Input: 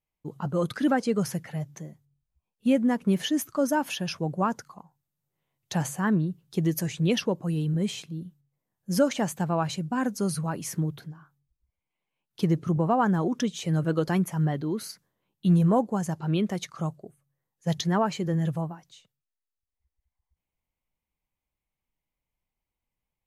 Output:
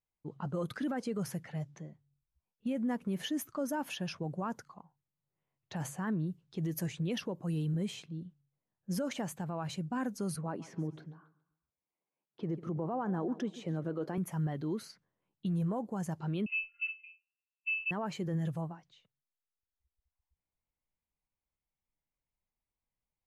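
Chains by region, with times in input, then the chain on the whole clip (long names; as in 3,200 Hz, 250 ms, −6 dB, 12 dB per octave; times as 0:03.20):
0:10.36–0:14.18: high-pass filter 320 Hz + spectral tilt −3.5 dB per octave + repeating echo 141 ms, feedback 40%, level −19.5 dB
0:16.46–0:17.91: low shelf with overshoot 360 Hz +10 dB, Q 1.5 + resonances in every octave F, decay 0.23 s + voice inversion scrambler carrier 2,800 Hz
whole clip: low-pass that shuts in the quiet parts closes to 2,300 Hz, open at −24 dBFS; dynamic equaliser 5,700 Hz, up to −4 dB, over −47 dBFS, Q 0.71; brickwall limiter −21 dBFS; level −6 dB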